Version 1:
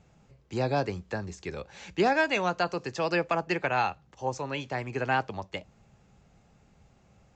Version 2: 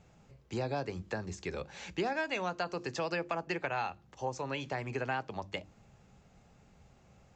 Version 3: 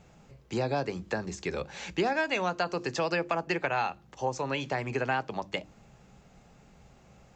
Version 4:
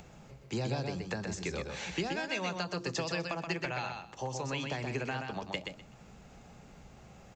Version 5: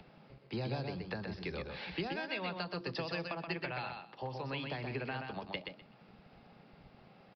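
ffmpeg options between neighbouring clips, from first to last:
-af "bandreject=f=50:t=h:w=6,bandreject=f=100:t=h:w=6,bandreject=f=150:t=h:w=6,bandreject=f=200:t=h:w=6,bandreject=f=250:t=h:w=6,bandreject=f=300:t=h:w=6,bandreject=f=350:t=h:w=6,acompressor=threshold=0.0224:ratio=3"
-af "equalizer=f=93:w=5.8:g=-14.5,volume=1.88"
-filter_complex "[0:a]acrossover=split=200|3000[s0][s1][s2];[s1]acompressor=threshold=0.0158:ratio=6[s3];[s0][s3][s2]amix=inputs=3:normalize=0,asplit=2[s4][s5];[s5]aecho=0:1:126|252|378:0.562|0.107|0.0203[s6];[s4][s6]amix=inputs=2:normalize=0,acompressor=mode=upward:threshold=0.00398:ratio=2.5"
-filter_complex "[0:a]acrossover=split=130|670|2500[s0][s1][s2][s3];[s0]aeval=exprs='val(0)*gte(abs(val(0)),0.00211)':c=same[s4];[s4][s1][s2][s3]amix=inputs=4:normalize=0,aresample=11025,aresample=44100,volume=0.668"

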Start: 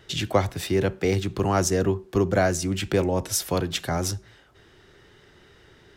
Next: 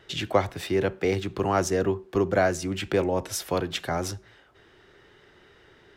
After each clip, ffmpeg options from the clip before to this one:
-af "bass=f=250:g=-6,treble=f=4000:g=-7"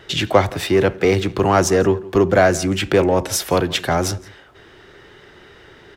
-filter_complex "[0:a]asplit=2[s0][s1];[s1]asoftclip=type=tanh:threshold=0.0631,volume=0.596[s2];[s0][s2]amix=inputs=2:normalize=0,asplit=2[s3][s4];[s4]adelay=169.1,volume=0.0891,highshelf=f=4000:g=-3.8[s5];[s3][s5]amix=inputs=2:normalize=0,volume=2.11"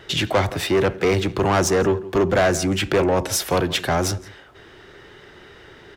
-af "asoftclip=type=tanh:threshold=0.237"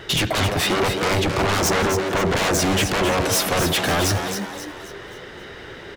-filter_complex "[0:a]aeval=exprs='0.237*sin(PI/2*2.24*val(0)/0.237)':c=same,asplit=6[s0][s1][s2][s3][s4][s5];[s1]adelay=266,afreqshift=100,volume=0.447[s6];[s2]adelay=532,afreqshift=200,volume=0.193[s7];[s3]adelay=798,afreqshift=300,volume=0.0822[s8];[s4]adelay=1064,afreqshift=400,volume=0.0355[s9];[s5]adelay=1330,afreqshift=500,volume=0.0153[s10];[s0][s6][s7][s8][s9][s10]amix=inputs=6:normalize=0,volume=0.596"

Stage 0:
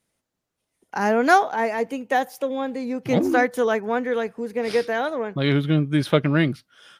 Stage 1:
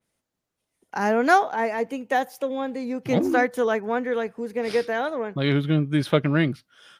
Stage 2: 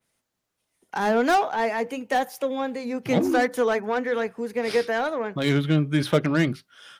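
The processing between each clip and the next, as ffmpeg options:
-af "adynamicequalizer=threshold=0.0141:dfrequency=3400:dqfactor=0.7:tfrequency=3400:tqfactor=0.7:attack=5:release=100:ratio=0.375:range=1.5:mode=cutabove:tftype=highshelf,volume=0.841"
-filter_complex "[0:a]acrossover=split=730[s0][s1];[s0]flanger=delay=7.3:depth=5.5:regen=-68:speed=0.43:shape=triangular[s2];[s1]asoftclip=type=tanh:threshold=0.0473[s3];[s2][s3]amix=inputs=2:normalize=0,volume=1.58"

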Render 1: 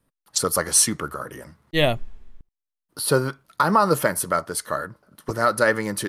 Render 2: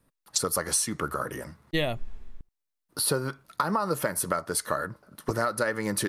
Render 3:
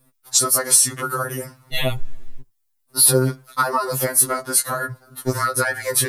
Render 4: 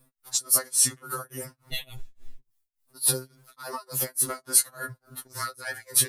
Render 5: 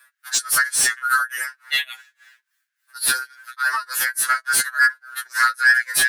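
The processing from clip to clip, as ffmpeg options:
-af "bandreject=f=3100:w=22,acompressor=threshold=0.0562:ratio=10,volume=1.26"
-af "highshelf=f=7500:g=11,afftfilt=real='re*2.45*eq(mod(b,6),0)':imag='im*2.45*eq(mod(b,6),0)':win_size=2048:overlap=0.75,volume=2.66"
-filter_complex "[0:a]acrossover=split=2700[s0][s1];[s0]acompressor=threshold=0.0355:ratio=6[s2];[s2][s1]amix=inputs=2:normalize=0,tremolo=f=3.5:d=0.97,volume=0.841"
-filter_complex "[0:a]highpass=f=1600:t=q:w=9,asplit=2[s0][s1];[s1]highpass=f=720:p=1,volume=7.94,asoftclip=type=tanh:threshold=0.501[s2];[s0][s2]amix=inputs=2:normalize=0,lowpass=f=5100:p=1,volume=0.501"

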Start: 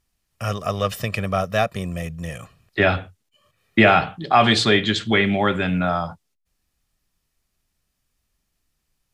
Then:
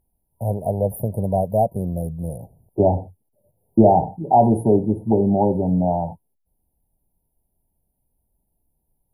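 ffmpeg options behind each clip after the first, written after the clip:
-af "afftfilt=real='re*(1-between(b*sr/4096,960,9500))':imag='im*(1-between(b*sr/4096,960,9500))':win_size=4096:overlap=0.75,volume=1.41"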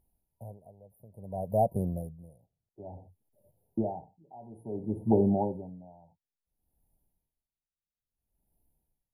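-filter_complex "[0:a]asplit=2[s0][s1];[s1]acompressor=threshold=0.0631:ratio=6,volume=0.708[s2];[s0][s2]amix=inputs=2:normalize=0,aeval=exprs='val(0)*pow(10,-29*(0.5-0.5*cos(2*PI*0.58*n/s))/20)':c=same,volume=0.422"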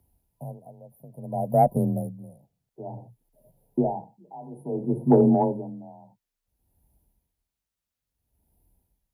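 -af "acontrast=81,afreqshift=27"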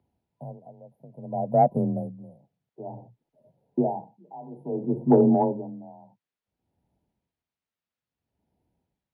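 -af "highpass=130,lowpass=3400"

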